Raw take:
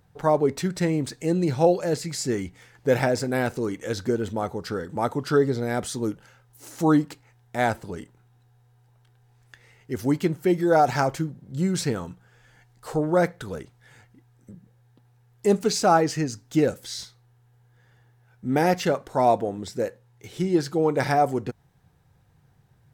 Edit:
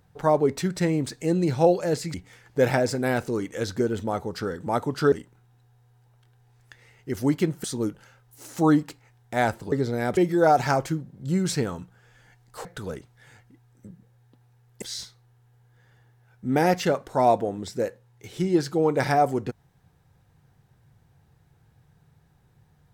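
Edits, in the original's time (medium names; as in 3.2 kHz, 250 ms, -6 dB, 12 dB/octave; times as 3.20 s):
2.14–2.43 s: delete
5.41–5.86 s: swap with 7.94–10.46 s
12.94–13.29 s: delete
15.46–16.82 s: delete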